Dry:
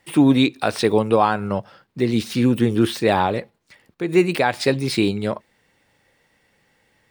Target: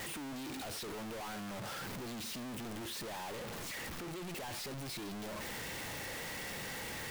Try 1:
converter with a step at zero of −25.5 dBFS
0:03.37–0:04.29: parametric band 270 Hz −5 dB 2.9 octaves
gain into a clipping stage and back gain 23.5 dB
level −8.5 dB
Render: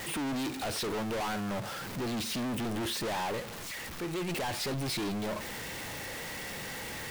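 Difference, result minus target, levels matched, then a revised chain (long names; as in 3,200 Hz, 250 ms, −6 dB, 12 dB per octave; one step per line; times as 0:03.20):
gain into a clipping stage and back: distortion −4 dB
converter with a step at zero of −25.5 dBFS
0:03.37–0:04.29: parametric band 270 Hz −5 dB 2.9 octaves
gain into a clipping stage and back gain 34 dB
level −8.5 dB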